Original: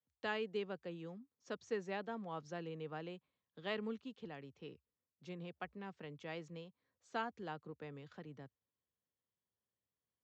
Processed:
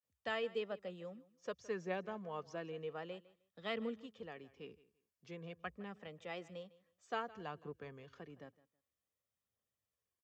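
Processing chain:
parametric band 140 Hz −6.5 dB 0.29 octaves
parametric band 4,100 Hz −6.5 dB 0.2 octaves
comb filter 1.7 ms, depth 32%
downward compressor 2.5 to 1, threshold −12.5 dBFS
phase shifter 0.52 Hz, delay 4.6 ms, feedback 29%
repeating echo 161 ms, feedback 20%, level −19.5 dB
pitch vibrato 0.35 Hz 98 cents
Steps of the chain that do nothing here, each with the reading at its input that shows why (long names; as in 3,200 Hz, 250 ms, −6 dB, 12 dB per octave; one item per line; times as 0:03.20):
downward compressor, threshold −12.5 dBFS: peak of its input −26.0 dBFS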